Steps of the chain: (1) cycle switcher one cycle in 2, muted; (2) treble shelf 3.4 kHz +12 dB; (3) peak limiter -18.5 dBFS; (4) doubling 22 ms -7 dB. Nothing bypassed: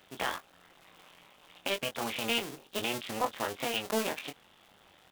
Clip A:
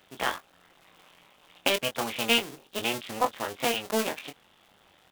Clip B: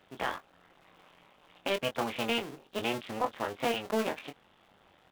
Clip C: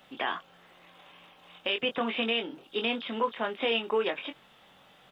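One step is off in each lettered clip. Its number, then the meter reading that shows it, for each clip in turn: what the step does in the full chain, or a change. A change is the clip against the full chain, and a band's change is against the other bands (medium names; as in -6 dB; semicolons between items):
3, mean gain reduction 2.0 dB; 2, 8 kHz band -8.5 dB; 1, 125 Hz band -7.5 dB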